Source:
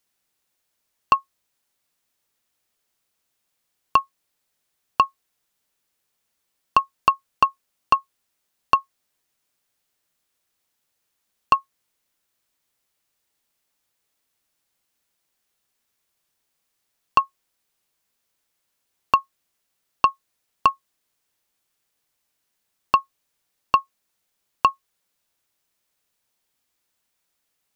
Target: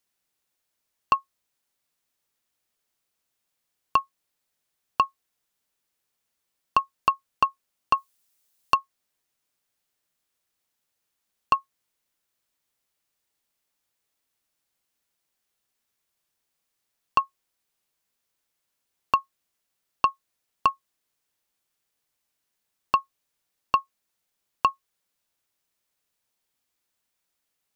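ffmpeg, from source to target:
-filter_complex "[0:a]asettb=1/sr,asplit=3[a][b][c];[a]atrim=end=7.974[d];[b]atrim=start=7.97:end=8.75,asetpts=PTS-STARTPTS,afade=t=in:d=0.004:c=qsin,afade=t=out:st=0.776:d=0.004:c=qsin,highshelf=f=4k:g=10.5[e];[c]atrim=start=8.746[f];[d][e]acrossfade=d=0.004:c1=hsin:c2=qsin[g];[g][f]acrossfade=d=0.004:c1=qsin:c2=hsin,volume=-4dB"

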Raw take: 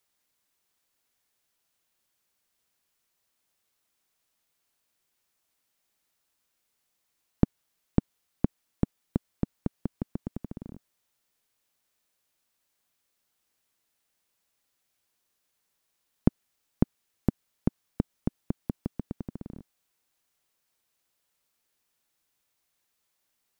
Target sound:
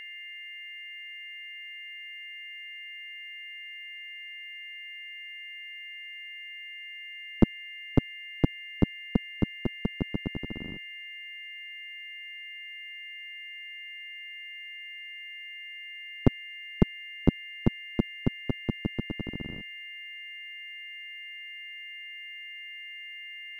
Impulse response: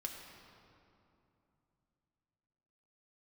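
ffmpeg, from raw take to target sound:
-filter_complex "[0:a]aeval=exprs='val(0)+0.00794*sin(2*PI*2100*n/s)':c=same,asplit=3[a][b][c];[b]asetrate=37084,aresample=44100,atempo=1.18921,volume=-10dB[d];[c]asetrate=58866,aresample=44100,atempo=0.749154,volume=-2dB[e];[a][d][e]amix=inputs=3:normalize=0"

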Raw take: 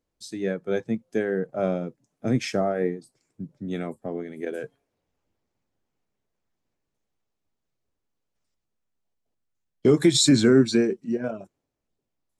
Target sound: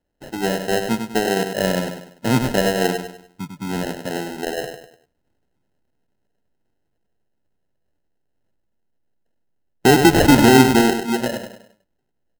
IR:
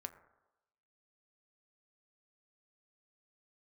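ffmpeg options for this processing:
-af "aecho=1:1:99|198|297|396:0.447|0.17|0.0645|0.0245,acrusher=samples=38:mix=1:aa=0.000001,volume=5dB"

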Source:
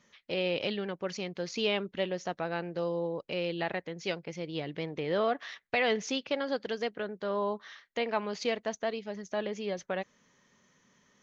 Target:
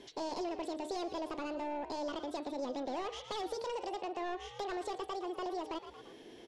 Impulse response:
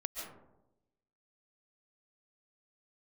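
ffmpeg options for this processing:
-filter_complex "[0:a]asoftclip=type=tanh:threshold=-32.5dB,lowshelf=f=420:t=q:w=1.5:g=6.5,bandreject=f=88.26:t=h:w=4,bandreject=f=176.52:t=h:w=4,bandreject=f=264.78:t=h:w=4,bandreject=f=353.04:t=h:w=4,bandreject=f=441.3:t=h:w=4,bandreject=f=529.56:t=h:w=4,bandreject=f=617.82:t=h:w=4,bandreject=f=706.08:t=h:w=4,bandreject=f=794.34:t=h:w=4,bandreject=f=882.6:t=h:w=4,bandreject=f=970.86:t=h:w=4,bandreject=f=1.05912k:t=h:w=4,bandreject=f=1.14738k:t=h:w=4,bandreject=f=1.23564k:t=h:w=4,bandreject=f=1.3239k:t=h:w=4,bandreject=f=1.41216k:t=h:w=4,bandreject=f=1.50042k:t=h:w=4,bandreject=f=1.58868k:t=h:w=4,bandreject=f=1.67694k:t=h:w=4,bandreject=f=1.7652k:t=h:w=4,bandreject=f=1.85346k:t=h:w=4,bandreject=f=1.94172k:t=h:w=4,bandreject=f=2.02998k:t=h:w=4,bandreject=f=2.11824k:t=h:w=4,bandreject=f=2.2065k:t=h:w=4,bandreject=f=2.29476k:t=h:w=4,bandreject=f=2.38302k:t=h:w=4,bandreject=f=2.47128k:t=h:w=4,bandreject=f=2.55954k:t=h:w=4,bandreject=f=2.6478k:t=h:w=4,asplit=4[a][b][c][d];[b]adelay=197,afreqshift=35,volume=-14.5dB[e];[c]adelay=394,afreqshift=70,volume=-23.9dB[f];[d]adelay=591,afreqshift=105,volume=-33.2dB[g];[a][e][f][g]amix=inputs=4:normalize=0,acompressor=threshold=-58dB:ratio=2,asetrate=76440,aresample=44100,lowpass=5.3k,volume=10dB"

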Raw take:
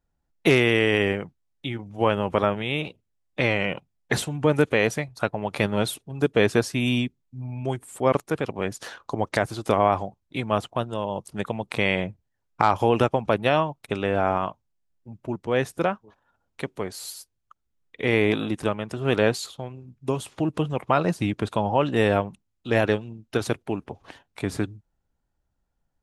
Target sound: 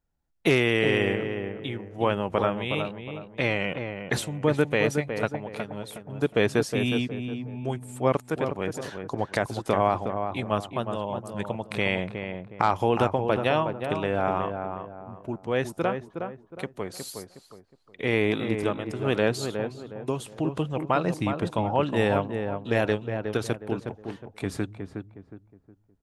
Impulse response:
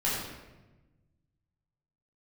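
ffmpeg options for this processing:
-filter_complex "[0:a]asettb=1/sr,asplit=3[a][b][c];[a]atrim=end=5.354[d];[b]atrim=start=5.35:end=6.07,asetpts=PTS-STARTPTS,afade=t=in:d=0.004:c=qsin,afade=t=out:st=0.716:d=0.004:c=qsin,acompressor=threshold=-30dB:ratio=10[e];[c]atrim=start=6.066[f];[d][e]acrossfade=d=0.004:c1=hsin:c2=qsin[g];[g][f]acrossfade=d=0.004:c1=qsin:c2=hsin,asplit=2[h][i];[i]adelay=364,lowpass=f=1.4k:p=1,volume=-6dB,asplit=2[j][k];[k]adelay=364,lowpass=f=1.4k:p=1,volume=0.36,asplit=2[l][m];[m]adelay=364,lowpass=f=1.4k:p=1,volume=0.36,asplit=2[n][o];[o]adelay=364,lowpass=f=1.4k:p=1,volume=0.36[p];[j][l][n][p]amix=inputs=4:normalize=0[q];[h][q]amix=inputs=2:normalize=0,volume=-3dB"

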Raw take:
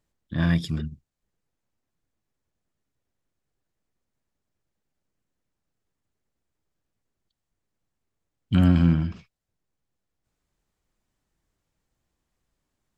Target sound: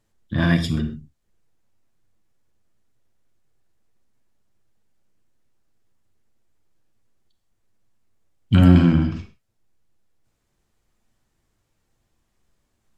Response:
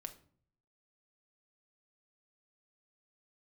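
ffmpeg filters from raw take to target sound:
-filter_complex "[1:a]atrim=start_sample=2205,atrim=end_sample=3969,asetrate=27342,aresample=44100[a];[0:a][a]afir=irnorm=-1:irlink=0,volume=8dB"

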